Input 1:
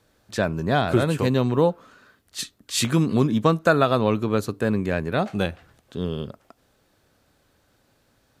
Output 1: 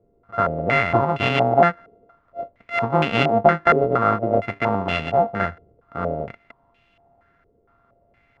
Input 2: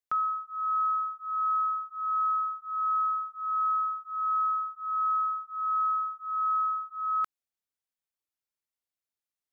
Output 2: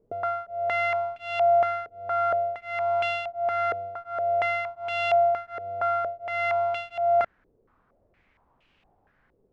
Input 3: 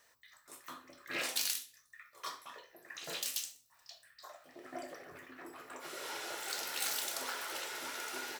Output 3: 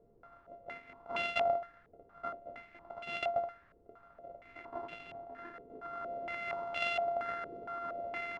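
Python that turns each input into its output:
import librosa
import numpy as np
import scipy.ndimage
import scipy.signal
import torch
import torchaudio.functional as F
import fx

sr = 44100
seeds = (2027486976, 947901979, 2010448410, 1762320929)

y = np.r_[np.sort(x[:len(x) // 64 * 64].reshape(-1, 64), axis=1).ravel(), x[len(x) // 64 * 64:]]
y = fx.dmg_noise_colour(y, sr, seeds[0], colour='pink', level_db=-66.0)
y = fx.filter_held_lowpass(y, sr, hz=4.3, low_hz=450.0, high_hz=2800.0)
y = y * librosa.db_to_amplitude(-1.5)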